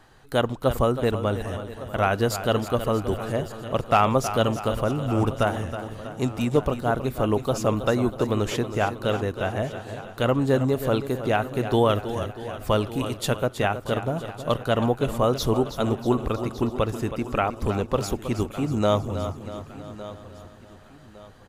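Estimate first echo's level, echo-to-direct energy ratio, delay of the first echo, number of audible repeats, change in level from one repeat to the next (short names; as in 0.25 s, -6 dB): -11.0 dB, -8.5 dB, 0.32 s, 10, no steady repeat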